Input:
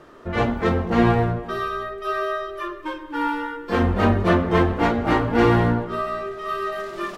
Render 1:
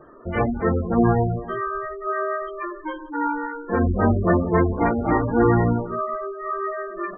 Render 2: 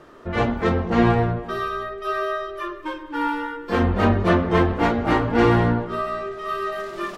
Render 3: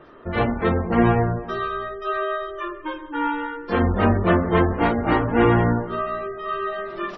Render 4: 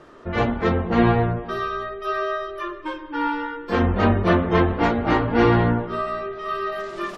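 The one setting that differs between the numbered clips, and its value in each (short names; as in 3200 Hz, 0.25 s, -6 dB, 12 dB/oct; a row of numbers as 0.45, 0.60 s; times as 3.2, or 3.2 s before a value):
spectral gate, under each frame's peak: -15, -60, -30, -45 dB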